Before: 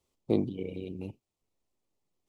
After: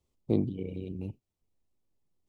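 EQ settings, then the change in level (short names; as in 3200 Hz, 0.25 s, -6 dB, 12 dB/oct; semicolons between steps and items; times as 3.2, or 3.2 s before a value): low shelf 240 Hz +11.5 dB; -5.0 dB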